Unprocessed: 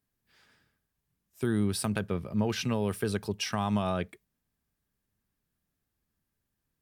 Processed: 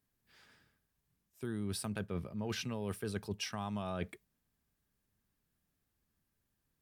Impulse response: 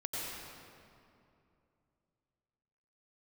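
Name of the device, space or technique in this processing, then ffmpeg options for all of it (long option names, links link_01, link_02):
compression on the reversed sound: -af "areverse,acompressor=threshold=-34dB:ratio=16,areverse"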